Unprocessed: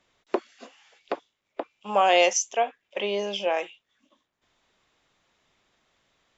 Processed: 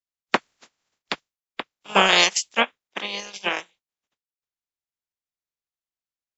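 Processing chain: spectral peaks clipped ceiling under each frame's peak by 29 dB; transient shaper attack +5 dB, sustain -10 dB; three bands expanded up and down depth 70%; trim -2 dB

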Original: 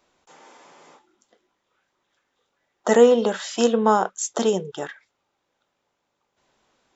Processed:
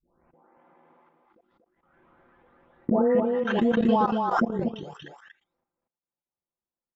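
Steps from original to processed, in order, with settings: delay that grows with frequency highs late, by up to 765 ms; gate with hold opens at -53 dBFS; level-controlled noise filter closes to 1.8 kHz, open at -21.5 dBFS; bass shelf 360 Hz +5.5 dB; transient shaper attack +3 dB, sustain -5 dB; level held to a coarse grid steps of 20 dB; distance through air 380 m; delay 236 ms -4 dB; swell ahead of each attack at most 44 dB/s

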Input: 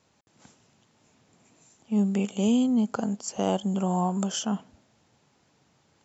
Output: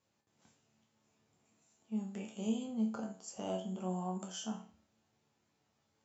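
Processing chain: chord resonator D2 major, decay 0.41 s; endings held to a fixed fall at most 330 dB/s

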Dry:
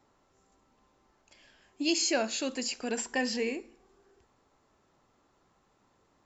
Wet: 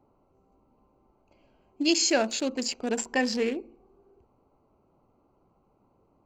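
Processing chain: local Wiener filter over 25 samples; trim +5 dB

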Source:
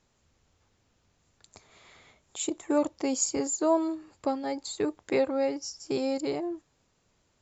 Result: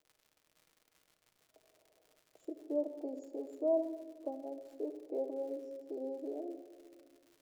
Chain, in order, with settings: elliptic band-pass 260–660 Hz, stop band 50 dB; differentiator; crackle 140 per s -67 dBFS; on a send: reverberation RT60 1.9 s, pre-delay 6 ms, DRR 7 dB; on the sum: trim +14.5 dB

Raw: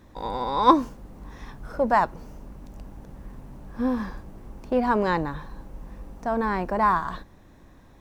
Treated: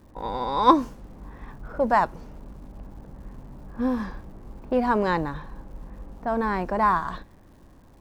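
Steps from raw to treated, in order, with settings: level-controlled noise filter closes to 1.2 kHz, open at -21.5 dBFS; crackle 350 per s -52 dBFS

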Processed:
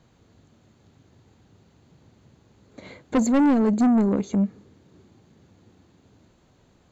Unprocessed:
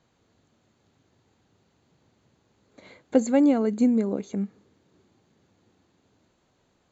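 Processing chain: bass shelf 240 Hz +8.5 dB; saturation -20.5 dBFS, distortion -8 dB; trim +5 dB

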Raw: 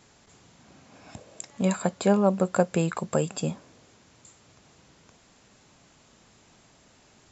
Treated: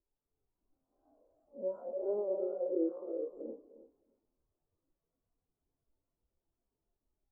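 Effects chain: spectral blur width 115 ms; steep high-pass 270 Hz 36 dB/octave; high-order bell 3.1 kHz -16 dB; in parallel at +2 dB: compression, threshold -44 dBFS, peak gain reduction 19 dB; on the sum: peak limiter -26.5 dBFS, peak gain reduction 10.5 dB; added noise pink -52 dBFS; distance through air 170 m; on a send: tape echo 306 ms, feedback 37%, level -4 dB, low-pass 5.4 kHz; on the sum: spring tank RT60 3.5 s, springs 30 ms, chirp 65 ms, DRR 13 dB; spectral contrast expander 2.5:1

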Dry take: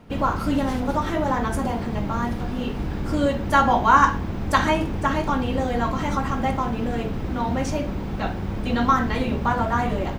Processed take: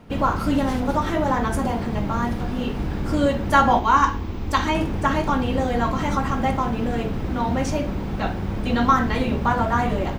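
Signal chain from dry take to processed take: 3.79–4.75 s: fifteen-band graphic EQ 160 Hz -11 dB, 630 Hz -7 dB, 1.6 kHz -6 dB, 10 kHz -8 dB; trim +1.5 dB

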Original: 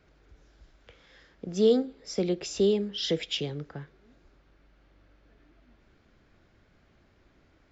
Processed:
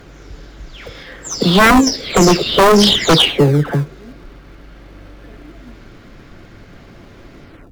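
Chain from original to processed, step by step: delay that grows with frequency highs early, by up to 326 ms; in parallel at -10.5 dB: decimation with a swept rate 35×, swing 100% 0.53 Hz; on the sum: sine folder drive 13 dB, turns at -10.5 dBFS; trim +5.5 dB

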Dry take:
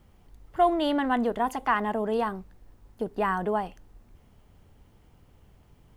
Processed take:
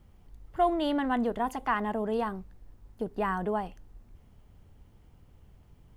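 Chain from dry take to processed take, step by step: bass shelf 190 Hz +6 dB; trim -4 dB

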